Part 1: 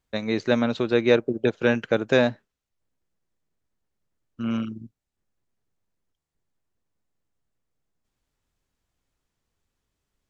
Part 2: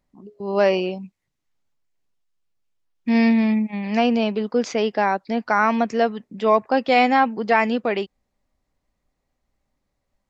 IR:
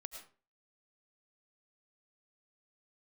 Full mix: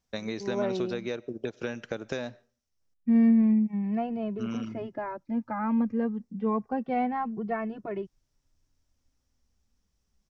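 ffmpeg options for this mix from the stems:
-filter_complex "[0:a]equalizer=frequency=5600:width_type=o:width=0.44:gain=12.5,acompressor=threshold=-26dB:ratio=8,volume=-4.5dB,asplit=3[link_01][link_02][link_03];[link_01]atrim=end=2.94,asetpts=PTS-STARTPTS,afade=type=out:start_time=2.936:duration=0.004:curve=hsin[link_04];[link_02]atrim=start=2.94:end=3.52,asetpts=PTS-STARTPTS,volume=0[link_05];[link_03]atrim=start=3.52,asetpts=PTS-STARTPTS,afade=type=in:duration=0.004:curve=hsin[link_06];[link_04][link_05][link_06]concat=n=3:v=0:a=1,asplit=2[link_07][link_08];[link_08]volume=-14dB[link_09];[1:a]lowpass=1300,asubboost=boost=4.5:cutoff=240,asplit=2[link_10][link_11];[link_11]adelay=2.2,afreqshift=-0.29[link_12];[link_10][link_12]amix=inputs=2:normalize=1,volume=-8dB[link_13];[2:a]atrim=start_sample=2205[link_14];[link_09][link_14]afir=irnorm=-1:irlink=0[link_15];[link_07][link_13][link_15]amix=inputs=3:normalize=0"

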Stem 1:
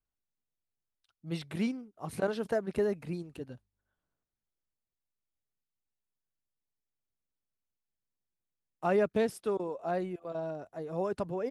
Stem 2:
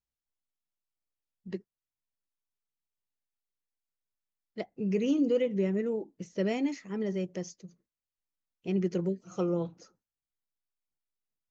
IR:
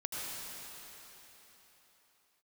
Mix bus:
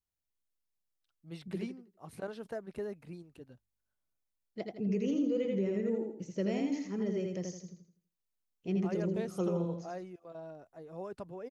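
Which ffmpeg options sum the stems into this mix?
-filter_complex "[0:a]volume=-9.5dB[link_01];[1:a]equalizer=frequency=1700:width=0.36:gain=-4.5,volume=-1.5dB,asplit=2[link_02][link_03];[link_03]volume=-3.5dB,aecho=0:1:82|164|246|328|410:1|0.36|0.13|0.0467|0.0168[link_04];[link_01][link_02][link_04]amix=inputs=3:normalize=0,alimiter=limit=-23.5dB:level=0:latency=1:release=137"

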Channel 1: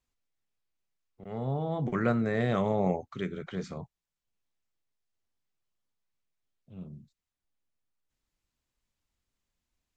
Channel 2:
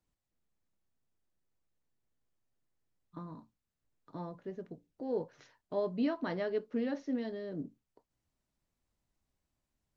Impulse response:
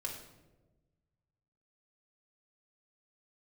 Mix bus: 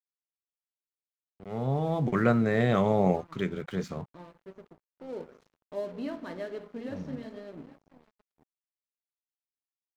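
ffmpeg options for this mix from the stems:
-filter_complex "[0:a]dynaudnorm=framelen=150:gausssize=13:maxgain=10dB,adelay=200,volume=-6dB[link_01];[1:a]volume=-5.5dB,asplit=3[link_02][link_03][link_04];[link_03]volume=-3.5dB[link_05];[link_04]volume=-12dB[link_06];[2:a]atrim=start_sample=2205[link_07];[link_05][link_07]afir=irnorm=-1:irlink=0[link_08];[link_06]aecho=0:1:819|1638|2457|3276:1|0.28|0.0784|0.022[link_09];[link_01][link_02][link_08][link_09]amix=inputs=4:normalize=0,aeval=exprs='sgn(val(0))*max(abs(val(0))-0.00282,0)':channel_layout=same"

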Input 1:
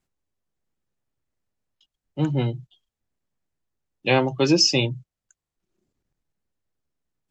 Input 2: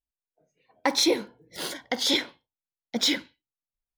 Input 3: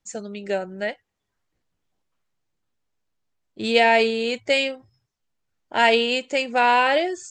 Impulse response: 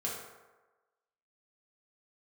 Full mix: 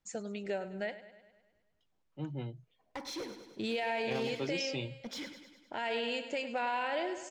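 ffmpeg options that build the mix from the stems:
-filter_complex "[0:a]volume=-16.5dB[link_01];[1:a]bandreject=frequency=3800:width=8.9,volume=22.5dB,asoftclip=hard,volume=-22.5dB,adelay=2100,volume=-13dB,asplit=2[link_02][link_03];[link_03]volume=-11dB[link_04];[2:a]volume=-3.5dB,asplit=2[link_05][link_06];[link_06]volume=-21.5dB[link_07];[link_02][link_05]amix=inputs=2:normalize=0,acompressor=threshold=-38dB:ratio=2,volume=0dB[link_08];[link_04][link_07]amix=inputs=2:normalize=0,aecho=0:1:102|204|306|408|510|612|714|816|918:1|0.59|0.348|0.205|0.121|0.0715|0.0422|0.0249|0.0147[link_09];[link_01][link_08][link_09]amix=inputs=3:normalize=0,highshelf=frequency=7400:gain=-9.5,alimiter=level_in=1.5dB:limit=-24dB:level=0:latency=1:release=13,volume=-1.5dB"

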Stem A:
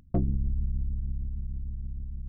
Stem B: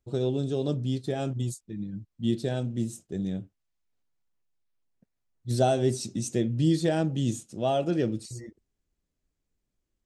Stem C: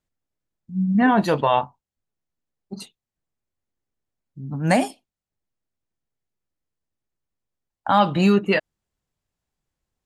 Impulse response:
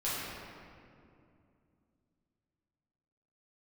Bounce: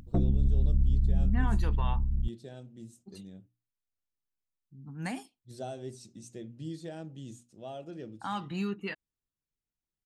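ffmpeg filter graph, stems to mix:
-filter_complex "[0:a]acontrast=84,alimiter=limit=-17dB:level=0:latency=1:release=370,volume=0.5dB[link_01];[1:a]bandreject=frequency=60:width_type=h:width=6,bandreject=frequency=120:width_type=h:width=6,bandreject=frequency=180:width_type=h:width=6,bandreject=frequency=240:width_type=h:width=6,bandreject=frequency=300:width_type=h:width=6,volume=-16dB[link_02];[2:a]equalizer=frequency=590:width=2.8:gain=-14,adelay=350,volume=-15.5dB[link_03];[link_01][link_02][link_03]amix=inputs=3:normalize=0"

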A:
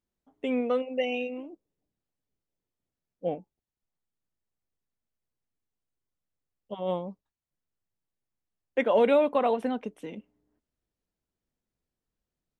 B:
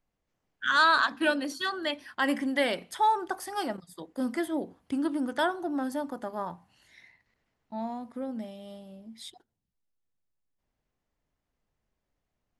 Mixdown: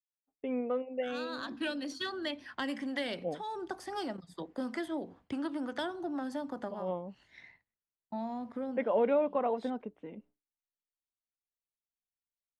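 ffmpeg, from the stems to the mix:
ffmpeg -i stem1.wav -i stem2.wav -filter_complex "[0:a]lowpass=1800,volume=-6dB,asplit=2[link_01][link_02];[1:a]acrossover=split=240|480|3400[link_03][link_04][link_05][link_06];[link_03]acompressor=threshold=-47dB:ratio=4[link_07];[link_04]acompressor=threshold=-45dB:ratio=4[link_08];[link_05]acompressor=threshold=-43dB:ratio=4[link_09];[link_06]acompressor=threshold=-41dB:ratio=4[link_10];[link_07][link_08][link_09][link_10]amix=inputs=4:normalize=0,highshelf=frequency=4500:gain=4,adynamicsmooth=sensitivity=2:basefreq=3900,adelay=400,volume=2.5dB[link_11];[link_02]apad=whole_len=573226[link_12];[link_11][link_12]sidechaincompress=threshold=-43dB:ratio=8:attack=26:release=306[link_13];[link_01][link_13]amix=inputs=2:normalize=0,agate=range=-33dB:threshold=-55dB:ratio=3:detection=peak" out.wav

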